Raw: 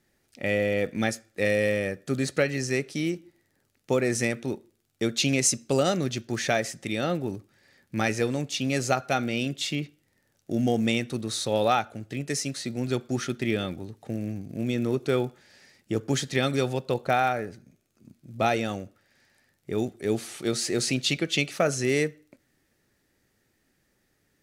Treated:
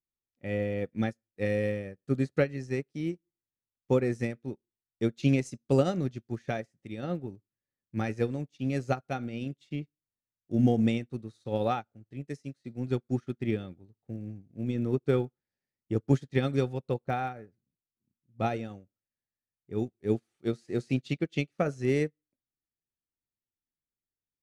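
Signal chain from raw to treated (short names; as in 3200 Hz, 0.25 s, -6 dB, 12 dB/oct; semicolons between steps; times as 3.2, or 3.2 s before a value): tilt -2.5 dB/oct; notch 630 Hz, Q 12; upward expander 2.5:1, over -40 dBFS; gain -1 dB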